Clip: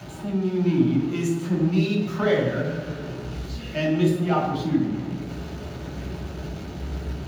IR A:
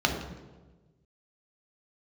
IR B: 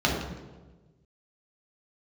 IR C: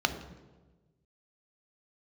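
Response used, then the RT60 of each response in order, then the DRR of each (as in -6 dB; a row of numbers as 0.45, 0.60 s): B; 1.3, 1.3, 1.3 s; 1.5, -3.5, 7.0 dB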